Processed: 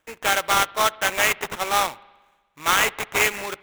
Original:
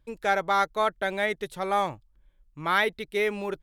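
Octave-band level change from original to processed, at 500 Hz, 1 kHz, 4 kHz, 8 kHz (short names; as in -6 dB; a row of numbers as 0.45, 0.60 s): -0.5, +3.5, +11.0, +21.5 dB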